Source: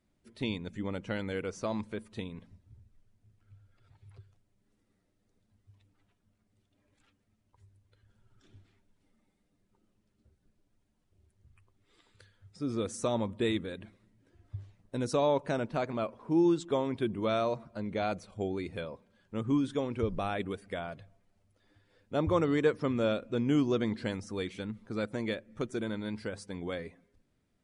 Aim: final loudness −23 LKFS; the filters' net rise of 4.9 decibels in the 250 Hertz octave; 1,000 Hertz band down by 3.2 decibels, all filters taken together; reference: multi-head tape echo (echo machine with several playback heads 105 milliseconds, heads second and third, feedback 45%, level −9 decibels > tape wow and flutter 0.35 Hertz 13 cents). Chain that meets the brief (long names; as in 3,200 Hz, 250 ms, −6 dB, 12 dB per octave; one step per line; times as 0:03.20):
parametric band 250 Hz +6.5 dB
parametric band 1,000 Hz −5 dB
echo machine with several playback heads 105 ms, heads second and third, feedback 45%, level −9 dB
tape wow and flutter 0.35 Hz 13 cents
level +6 dB